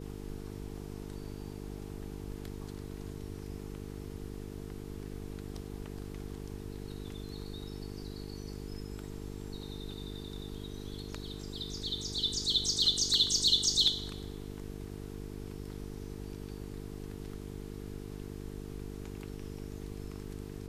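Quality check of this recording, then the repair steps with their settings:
mains buzz 50 Hz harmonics 9 −43 dBFS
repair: hum removal 50 Hz, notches 9

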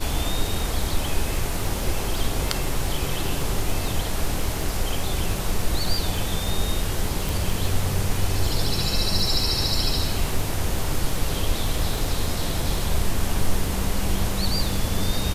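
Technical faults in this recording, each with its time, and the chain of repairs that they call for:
surface crackle 25 per second −27 dBFS
0:07.29: click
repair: click removal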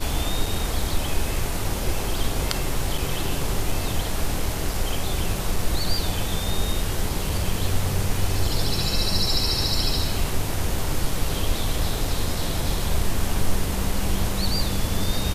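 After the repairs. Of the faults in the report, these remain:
none of them is left

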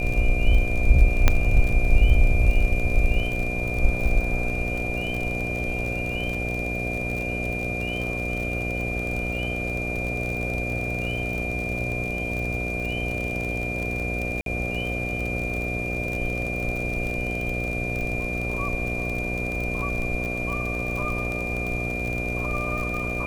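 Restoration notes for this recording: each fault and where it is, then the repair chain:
mains buzz 60 Hz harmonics 12 −30 dBFS
surface crackle 41 per second −27 dBFS
whistle 2,400 Hz −29 dBFS
0:01.28: click −3 dBFS
0:14.41–0:14.46: drop-out 52 ms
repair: click removal
hum removal 60 Hz, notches 12
notch filter 2,400 Hz, Q 30
repair the gap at 0:14.41, 52 ms

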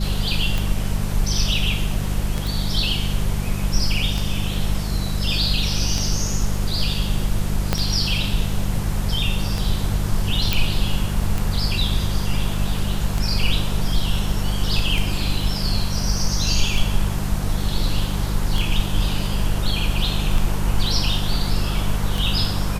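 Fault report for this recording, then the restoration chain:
mains hum 50 Hz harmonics 4 −25 dBFS
scratch tick 33 1/3 rpm
0:02.47: click
0:07.73: click −4 dBFS
0:10.53: click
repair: click removal
hum removal 50 Hz, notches 4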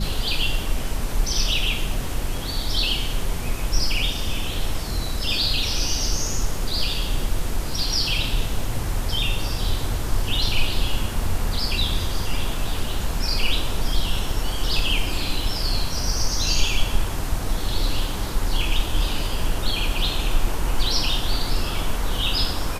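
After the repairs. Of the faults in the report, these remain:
0:07.73: click

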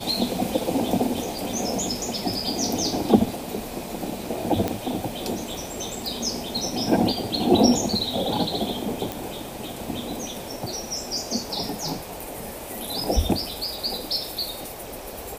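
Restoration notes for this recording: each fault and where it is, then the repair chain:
0:04.68: click −10 dBFS
0:09.12: click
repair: click removal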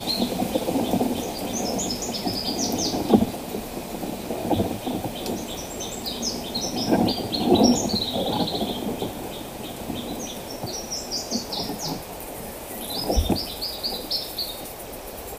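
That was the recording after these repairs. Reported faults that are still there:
none of them is left

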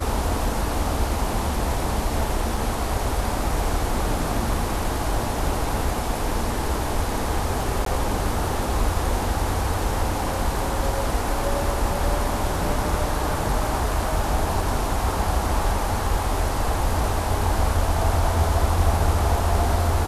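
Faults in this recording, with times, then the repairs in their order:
0:02.57: drop-out 3.8 ms
0:07.85–0:07.86: drop-out 13 ms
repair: repair the gap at 0:02.57, 3.8 ms
repair the gap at 0:07.85, 13 ms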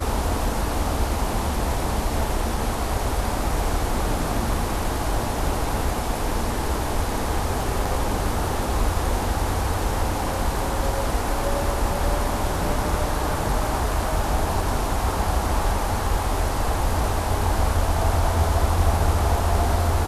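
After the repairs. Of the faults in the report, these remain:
none of them is left

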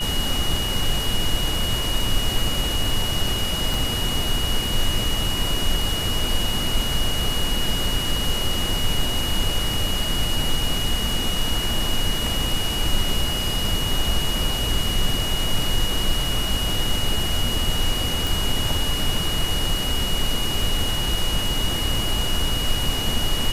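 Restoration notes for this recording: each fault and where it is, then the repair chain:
whistle 2,900 Hz −26 dBFS
0:03.74: click
0:18.27: click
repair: click removal
notch filter 2,900 Hz, Q 30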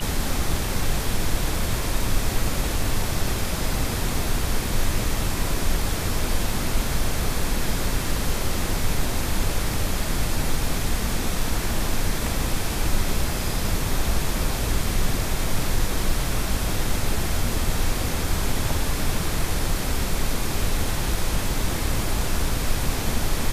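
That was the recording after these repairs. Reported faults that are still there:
0:03.74: click

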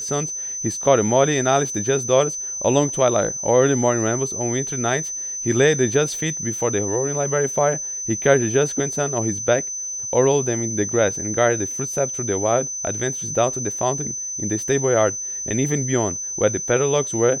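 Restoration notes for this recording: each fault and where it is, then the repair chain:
whistle 6,100 Hz −26 dBFS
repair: notch filter 6,100 Hz, Q 30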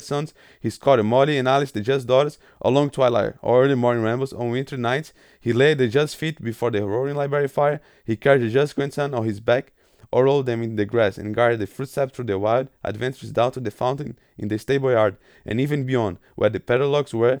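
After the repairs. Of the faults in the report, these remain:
none of them is left

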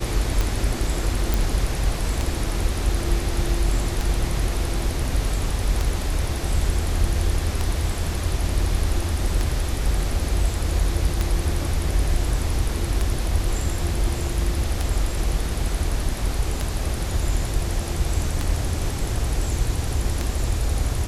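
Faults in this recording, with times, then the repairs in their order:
scratch tick 33 1/3 rpm
0:01.34: click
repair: click removal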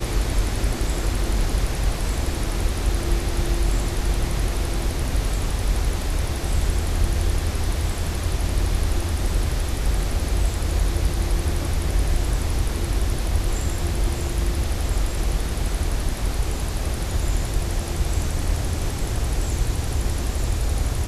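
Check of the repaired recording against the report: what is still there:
none of them is left

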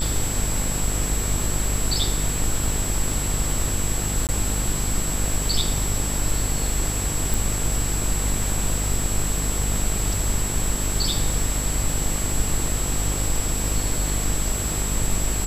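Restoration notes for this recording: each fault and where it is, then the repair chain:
mains buzz 50 Hz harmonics 29 −27 dBFS
surface crackle 29 per second −29 dBFS
whistle 7,700 Hz −28 dBFS
0:04.27–0:04.29: drop-out 18 ms
0:07.34: click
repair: click removal
notch filter 7,700 Hz, Q 30
hum removal 50 Hz, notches 29
repair the gap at 0:04.27, 18 ms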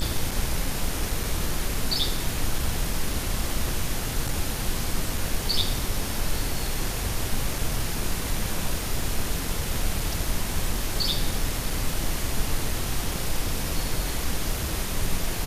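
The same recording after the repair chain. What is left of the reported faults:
none of them is left

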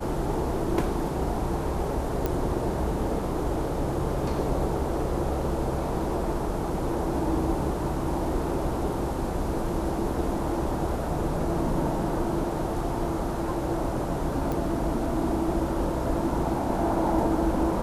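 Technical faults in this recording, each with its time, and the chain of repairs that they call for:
0:02.26: click
0:14.52: click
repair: click removal

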